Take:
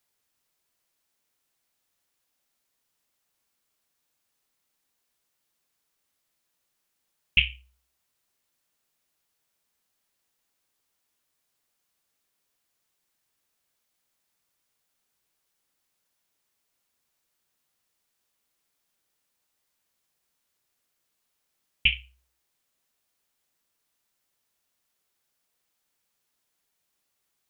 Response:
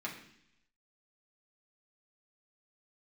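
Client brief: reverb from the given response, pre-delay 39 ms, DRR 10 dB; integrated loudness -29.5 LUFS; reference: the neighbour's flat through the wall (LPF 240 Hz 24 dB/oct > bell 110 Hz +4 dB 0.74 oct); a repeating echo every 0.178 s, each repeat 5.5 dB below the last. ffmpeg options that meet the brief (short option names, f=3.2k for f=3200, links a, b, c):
-filter_complex "[0:a]aecho=1:1:178|356|534|712|890|1068|1246:0.531|0.281|0.149|0.079|0.0419|0.0222|0.0118,asplit=2[a][b];[1:a]atrim=start_sample=2205,adelay=39[c];[b][c]afir=irnorm=-1:irlink=0,volume=-12dB[d];[a][d]amix=inputs=2:normalize=0,lowpass=f=240:w=0.5412,lowpass=f=240:w=1.3066,equalizer=f=110:t=o:w=0.74:g=4,volume=13dB"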